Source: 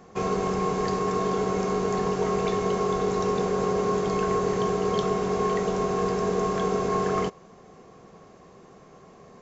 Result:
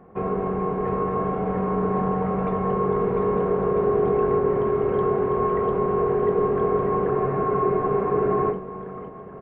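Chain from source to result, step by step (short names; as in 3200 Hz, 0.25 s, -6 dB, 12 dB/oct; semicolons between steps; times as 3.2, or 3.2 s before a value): Gaussian blur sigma 4.7 samples; bouncing-ball echo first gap 0.7 s, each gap 0.85×, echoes 5; spectral freeze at 7.12, 1.39 s; gain +1.5 dB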